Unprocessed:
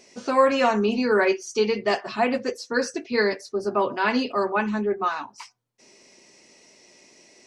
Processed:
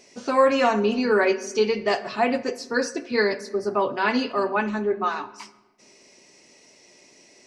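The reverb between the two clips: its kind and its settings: shoebox room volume 710 m³, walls mixed, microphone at 0.32 m

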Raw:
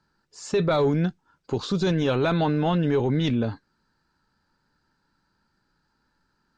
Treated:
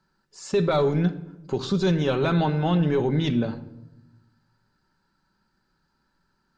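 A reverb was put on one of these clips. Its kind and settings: shoebox room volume 3300 m³, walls furnished, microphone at 1.1 m; gain -1 dB

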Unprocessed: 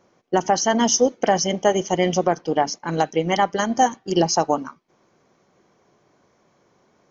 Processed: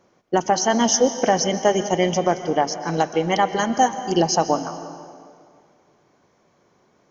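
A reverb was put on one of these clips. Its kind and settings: plate-style reverb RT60 2.1 s, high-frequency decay 0.8×, pre-delay 0.115 s, DRR 10.5 dB

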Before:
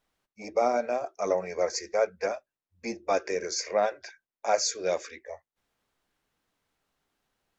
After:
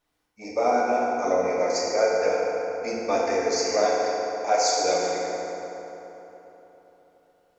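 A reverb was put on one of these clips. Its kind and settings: FDN reverb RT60 3.7 s, high-frequency decay 0.55×, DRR -5.5 dB; gain -1 dB

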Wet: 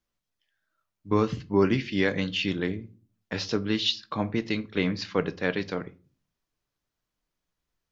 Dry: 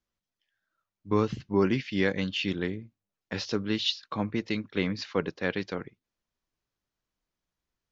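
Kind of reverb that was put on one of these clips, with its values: shoebox room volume 190 m³, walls furnished, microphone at 0.41 m; gain +2 dB

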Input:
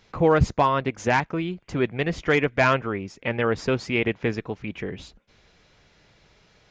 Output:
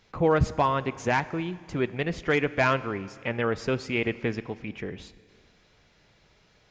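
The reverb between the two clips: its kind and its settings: Schroeder reverb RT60 2.1 s, combs from 30 ms, DRR 16.5 dB; gain -3.5 dB

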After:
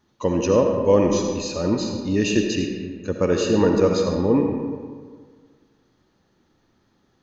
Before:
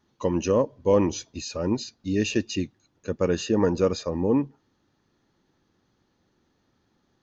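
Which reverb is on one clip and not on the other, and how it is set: digital reverb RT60 1.7 s, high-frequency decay 0.55×, pre-delay 30 ms, DRR 2.5 dB; gain +3 dB

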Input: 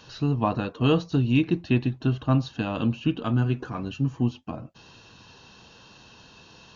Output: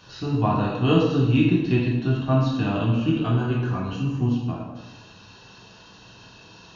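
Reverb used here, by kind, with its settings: plate-style reverb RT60 1.1 s, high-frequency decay 0.75×, DRR -4.5 dB; gain -2.5 dB

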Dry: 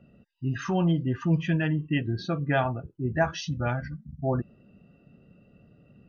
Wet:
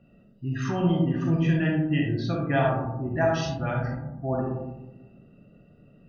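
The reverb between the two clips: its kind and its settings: digital reverb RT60 1.1 s, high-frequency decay 0.25×, pre-delay 0 ms, DRR -1.5 dB; gain -2.5 dB

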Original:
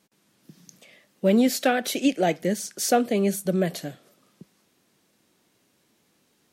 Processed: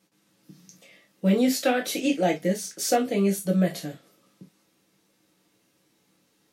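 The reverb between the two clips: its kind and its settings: non-linear reverb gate 80 ms falling, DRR 0 dB; gain -4 dB

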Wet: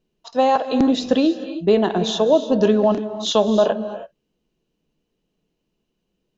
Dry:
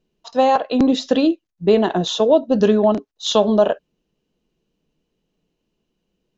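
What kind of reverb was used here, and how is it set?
non-linear reverb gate 0.35 s rising, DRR 11 dB; gain -1.5 dB

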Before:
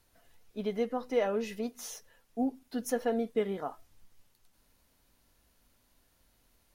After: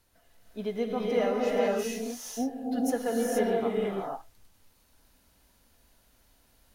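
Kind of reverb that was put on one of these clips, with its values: non-linear reverb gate 0.5 s rising, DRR -3.5 dB

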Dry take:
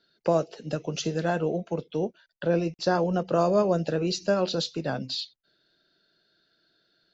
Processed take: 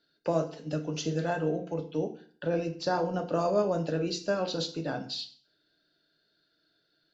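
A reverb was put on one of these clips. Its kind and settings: FDN reverb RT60 0.48 s, low-frequency decay 1.2×, high-frequency decay 0.9×, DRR 5 dB; gain -5 dB

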